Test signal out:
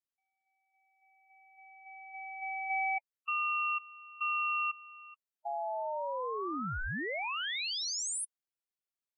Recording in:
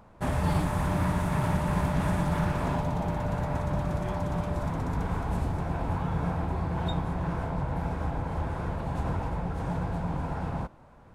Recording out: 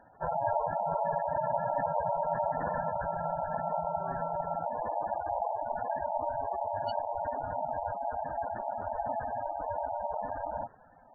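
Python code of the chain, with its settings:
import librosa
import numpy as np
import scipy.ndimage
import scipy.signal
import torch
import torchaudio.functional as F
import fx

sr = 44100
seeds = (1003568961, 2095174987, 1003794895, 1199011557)

y = x * np.sin(2.0 * np.pi * 760.0 * np.arange(len(x)) / sr)
y = fx.spec_gate(y, sr, threshold_db=-10, keep='strong')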